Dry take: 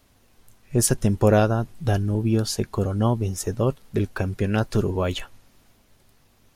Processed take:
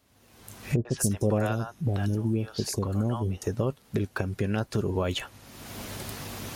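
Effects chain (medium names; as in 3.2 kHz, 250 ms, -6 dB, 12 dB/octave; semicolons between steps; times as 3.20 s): recorder AGC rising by 36 dB/s; high-pass 65 Hz; 0.76–3.42 s: three bands offset in time lows, mids, highs 90/190 ms, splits 670/4500 Hz; trim -6.5 dB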